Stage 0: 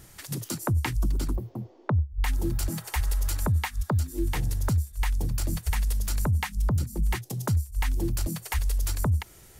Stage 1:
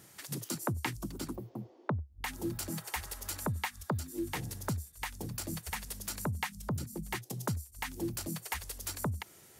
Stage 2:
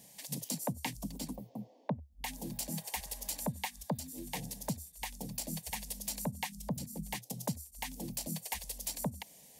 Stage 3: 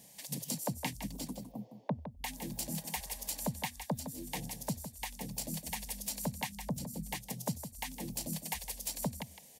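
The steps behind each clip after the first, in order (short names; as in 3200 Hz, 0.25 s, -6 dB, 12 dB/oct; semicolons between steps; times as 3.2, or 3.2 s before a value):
HPF 150 Hz 12 dB/oct; gain -4 dB
fixed phaser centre 360 Hz, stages 6; gain +1.5 dB
echo 0.16 s -10 dB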